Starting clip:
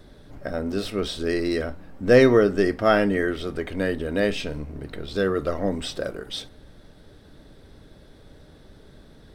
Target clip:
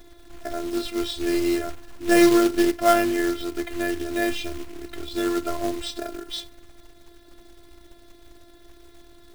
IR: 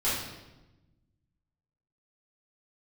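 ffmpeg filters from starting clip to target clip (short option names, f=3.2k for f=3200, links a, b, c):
-af "afftfilt=real='hypot(re,im)*cos(PI*b)':imag='0':win_size=512:overlap=0.75,acrusher=bits=3:mode=log:mix=0:aa=0.000001,volume=3dB"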